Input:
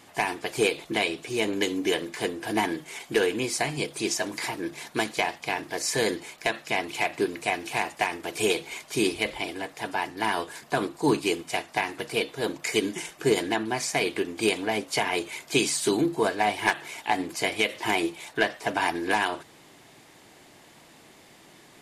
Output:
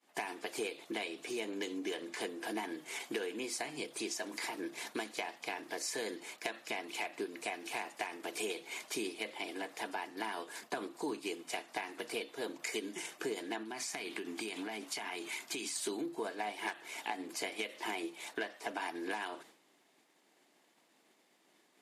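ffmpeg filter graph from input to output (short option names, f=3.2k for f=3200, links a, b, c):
-filter_complex "[0:a]asettb=1/sr,asplit=3[a][b][c];[a]atrim=end=1.534[d];[b]atrim=start=1.53:end=2.21,asetpts=PTS-STARTPTS,afade=t=in:d=0.004:c=qsin,afade=t=out:st=0.676:d=0.004:c=qsin,lowpass=11k,volume=17dB,asoftclip=hard,volume=-17dB[e];[c]atrim=start=2.206[f];[d][e]acrossfade=d=0.004:c1=hsin:c2=qsin[g];[g][f]acrossfade=d=0.004:c1=qsin:c2=hsin,asettb=1/sr,asplit=3[h][i][j];[h]atrim=end=13.634[k];[i]atrim=start=13.63:end=15.76,asetpts=PTS-STARTPTS,afade=t=in:d=0.004:c=qsin,afade=t=out:st=2.126:d=0.004:c=qsin,acompressor=threshold=-29dB:ratio=6:attack=3.2:release=140:knee=1:detection=peak,equalizer=f=520:w=3.4:g=-10.5[l];[j]atrim=start=15.756[m];[k][l]acrossfade=d=0.004:c1=hsin:c2=qsin[n];[n][m]acrossfade=d=0.004:c1=qsin:c2=hsin,agate=range=-33dB:threshold=-41dB:ratio=3:detection=peak,acompressor=threshold=-38dB:ratio=4,highpass=f=210:w=0.5412,highpass=f=210:w=1.3066"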